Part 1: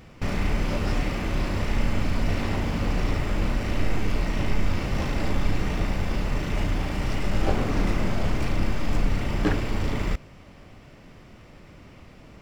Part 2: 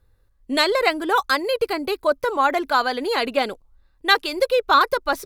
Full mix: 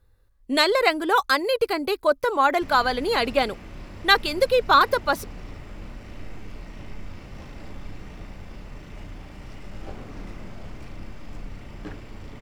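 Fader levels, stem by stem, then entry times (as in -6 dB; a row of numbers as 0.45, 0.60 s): -14.0, -0.5 dB; 2.40, 0.00 s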